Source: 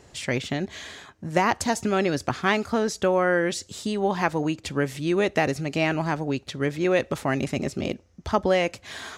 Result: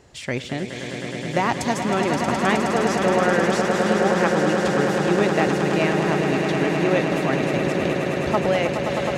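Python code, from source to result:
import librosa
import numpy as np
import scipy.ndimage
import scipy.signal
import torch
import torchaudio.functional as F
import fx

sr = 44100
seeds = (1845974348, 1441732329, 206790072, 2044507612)

p1 = fx.peak_eq(x, sr, hz=11000.0, db=-3.5, octaves=1.9)
y = p1 + fx.echo_swell(p1, sr, ms=105, loudest=8, wet_db=-8.5, dry=0)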